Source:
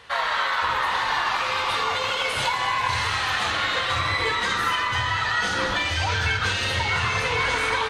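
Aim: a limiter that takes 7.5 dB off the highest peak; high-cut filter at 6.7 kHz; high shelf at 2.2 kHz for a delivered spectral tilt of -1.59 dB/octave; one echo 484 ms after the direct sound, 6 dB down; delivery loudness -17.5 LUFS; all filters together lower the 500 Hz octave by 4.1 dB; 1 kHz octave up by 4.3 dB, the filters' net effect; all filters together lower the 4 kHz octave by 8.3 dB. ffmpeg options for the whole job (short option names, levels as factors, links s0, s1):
-af "lowpass=6700,equalizer=f=500:t=o:g=-6.5,equalizer=f=1000:t=o:g=8,highshelf=f=2200:g=-6.5,equalizer=f=4000:t=o:g=-5,alimiter=limit=0.158:level=0:latency=1,aecho=1:1:484:0.501,volume=2"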